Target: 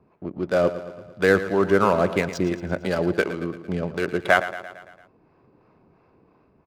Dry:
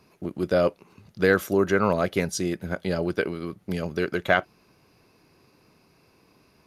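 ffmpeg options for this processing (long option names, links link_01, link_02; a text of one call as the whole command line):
ffmpeg -i in.wav -filter_complex "[0:a]lowpass=6500,equalizer=frequency=880:width_type=o:width=1.8:gain=3.5,dynaudnorm=framelen=410:gausssize=5:maxgain=4.5dB,acrossover=split=610[link_01][link_02];[link_01]aeval=exprs='val(0)*(1-0.5/2+0.5/2*cos(2*PI*2.9*n/s))':channel_layout=same[link_03];[link_02]aeval=exprs='val(0)*(1-0.5/2-0.5/2*cos(2*PI*2.9*n/s))':channel_layout=same[link_04];[link_03][link_04]amix=inputs=2:normalize=0,adynamicsmooth=sensitivity=7:basefreq=1400,asplit=2[link_05][link_06];[link_06]aecho=0:1:113|226|339|452|565|678:0.224|0.13|0.0753|0.0437|0.0253|0.0147[link_07];[link_05][link_07]amix=inputs=2:normalize=0,volume=1dB" out.wav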